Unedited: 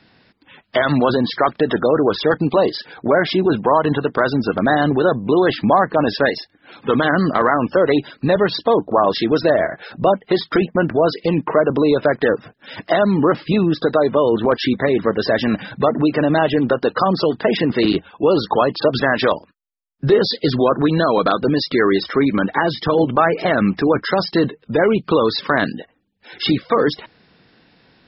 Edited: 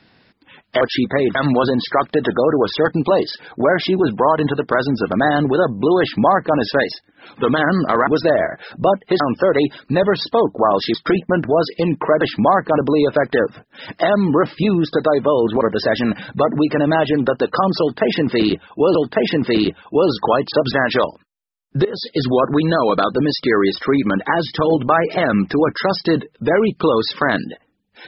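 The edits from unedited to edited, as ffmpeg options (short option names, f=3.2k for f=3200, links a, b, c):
-filter_complex "[0:a]asplit=11[a][b][c][d][e][f][g][h][i][j][k];[a]atrim=end=0.812[l];[b]atrim=start=14.498:end=15.042[m];[c]atrim=start=0.808:end=7.532[n];[d]atrim=start=9.268:end=10.402[o];[e]atrim=start=7.528:end=9.272[p];[f]atrim=start=10.398:end=11.672[q];[g]atrim=start=5.458:end=6.032[r];[h]atrim=start=11.668:end=14.502[s];[i]atrim=start=15.038:end=18.382[t];[j]atrim=start=17.228:end=20.13,asetpts=PTS-STARTPTS,afade=t=out:st=2.898:d=0.004:c=hsin:silence=0.125893[u];[k]atrim=start=20.13,asetpts=PTS-STARTPTS,afade=t=in:d=0.41:silence=0.125893[v];[l][m]acrossfade=d=0.004:c1=hsin:c2=hsin[w];[w][n]acrossfade=d=0.004:c1=hsin:c2=hsin[x];[x][o]acrossfade=d=0.004:c1=hsin:c2=hsin[y];[y][p]acrossfade=d=0.004:c1=hsin:c2=hsin[z];[z][q]acrossfade=d=0.004:c1=hsin:c2=hsin[aa];[aa][r]acrossfade=d=0.004:c1=hsin:c2=hsin[ab];[ab][s]acrossfade=d=0.004:c1=hsin:c2=hsin[ac];[ac][t]acrossfade=d=0.004:c1=hsin:c2=hsin[ad];[u][v]concat=n=2:v=0:a=1[ae];[ad][ae]acrossfade=d=0.004:c1=hsin:c2=hsin"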